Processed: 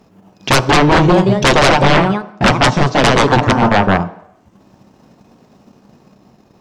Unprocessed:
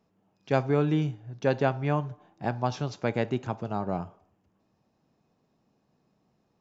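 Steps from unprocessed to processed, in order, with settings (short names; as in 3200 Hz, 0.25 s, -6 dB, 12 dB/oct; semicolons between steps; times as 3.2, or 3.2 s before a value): transient shaper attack +7 dB, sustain -12 dB; echoes that change speed 0.268 s, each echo +2 st, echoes 3, each echo -6 dB; sine folder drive 19 dB, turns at -5 dBFS; on a send at -12 dB: reverb RT60 0.70 s, pre-delay 3 ms; on the sum: ending taper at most 310 dB/s; gain -1 dB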